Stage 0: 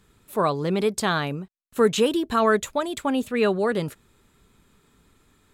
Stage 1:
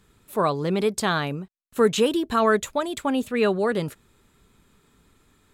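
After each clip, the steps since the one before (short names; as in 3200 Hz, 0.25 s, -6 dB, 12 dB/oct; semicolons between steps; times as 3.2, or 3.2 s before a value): nothing audible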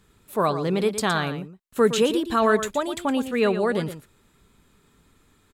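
echo 0.115 s -11 dB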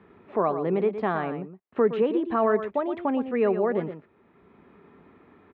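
speaker cabinet 120–2100 Hz, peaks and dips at 130 Hz -9 dB, 380 Hz +4 dB, 710 Hz +4 dB, 1500 Hz -6 dB; three-band squash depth 40%; gain -3 dB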